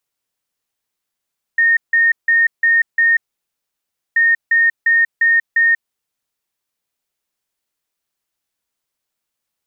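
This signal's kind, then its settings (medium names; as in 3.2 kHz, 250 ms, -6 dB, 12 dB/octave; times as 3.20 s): beep pattern sine 1.84 kHz, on 0.19 s, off 0.16 s, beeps 5, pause 0.99 s, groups 2, -9.5 dBFS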